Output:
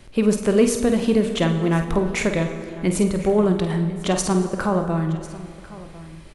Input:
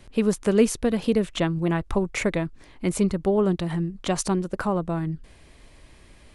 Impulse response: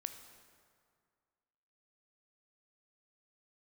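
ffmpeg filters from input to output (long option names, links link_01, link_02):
-filter_complex "[0:a]acontrast=55,asplit=2[link_01][link_02];[link_02]adelay=49,volume=-9dB[link_03];[link_01][link_03]amix=inputs=2:normalize=0,aecho=1:1:1048:0.112[link_04];[1:a]atrim=start_sample=2205[link_05];[link_04][link_05]afir=irnorm=-1:irlink=0"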